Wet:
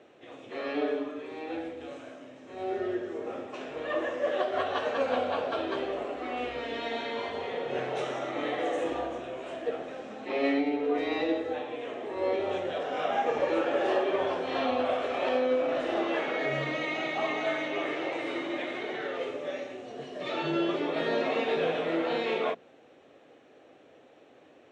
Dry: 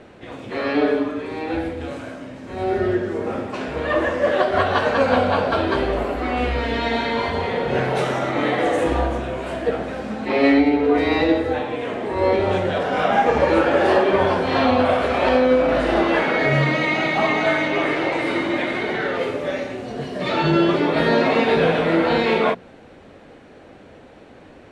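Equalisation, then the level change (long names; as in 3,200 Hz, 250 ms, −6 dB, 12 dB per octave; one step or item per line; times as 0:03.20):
loudspeaker in its box 190–7,400 Hz, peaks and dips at 200 Hz −10 dB, 950 Hz −6 dB, 1,500 Hz −6 dB, 2,100 Hz −4 dB, 4,600 Hz −9 dB
low-shelf EQ 470 Hz −4 dB
−7.5 dB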